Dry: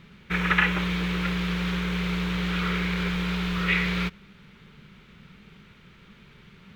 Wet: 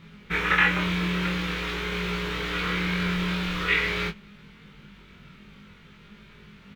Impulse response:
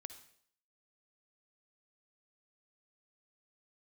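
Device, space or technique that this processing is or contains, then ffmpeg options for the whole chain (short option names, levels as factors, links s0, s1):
double-tracked vocal: -filter_complex "[0:a]asplit=2[s0][s1];[s1]adelay=24,volume=0.531[s2];[s0][s2]amix=inputs=2:normalize=0,flanger=delay=19:depth=2:speed=0.48,volume=1.5"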